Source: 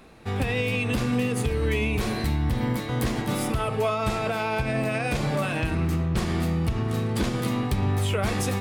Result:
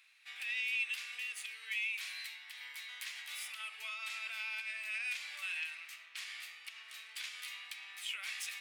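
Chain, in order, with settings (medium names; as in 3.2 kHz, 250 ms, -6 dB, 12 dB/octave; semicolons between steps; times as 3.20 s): tracing distortion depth 0.023 ms; Chebyshev high-pass 2.3 kHz, order 3; treble shelf 3.2 kHz -10.5 dB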